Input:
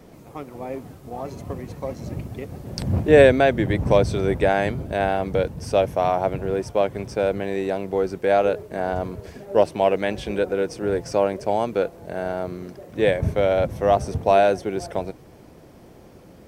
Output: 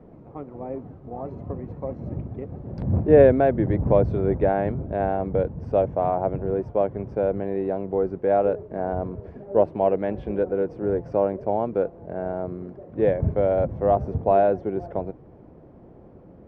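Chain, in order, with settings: Bessel low-pass 790 Hz, order 2

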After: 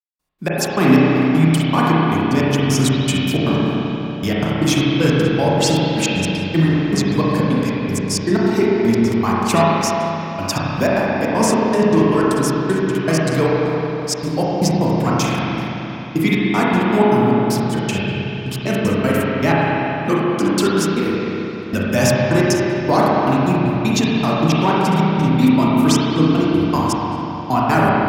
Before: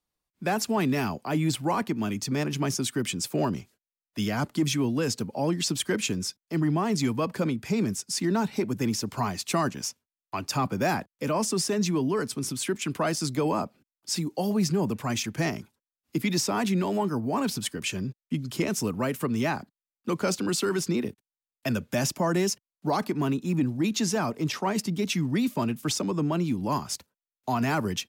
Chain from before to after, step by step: thinning echo 69 ms, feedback 35%, high-pass 470 Hz, level -12 dB; step gate "..x.x.x.xx" 156 bpm -60 dB; spring tank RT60 3.6 s, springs 31/43 ms, chirp 75 ms, DRR -6.5 dB; gain +7.5 dB

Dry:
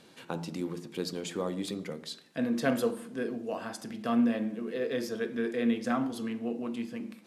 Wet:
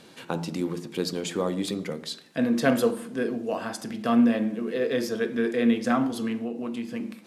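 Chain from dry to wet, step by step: 6.37–6.89 compressor, threshold -34 dBFS, peak gain reduction 6 dB; gain +6 dB

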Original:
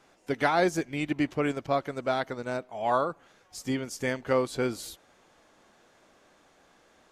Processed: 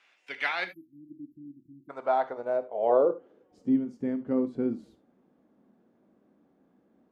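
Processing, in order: band-pass sweep 2500 Hz -> 230 Hz, 0.73–3.72; 0.65–1.9 spectral delete 350–11000 Hz; 2.63–3.69 small resonant body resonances 490/3000 Hz, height 9 dB, ringing for 20 ms; non-linear reverb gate 0.1 s flat, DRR 10 dB; gain +6 dB

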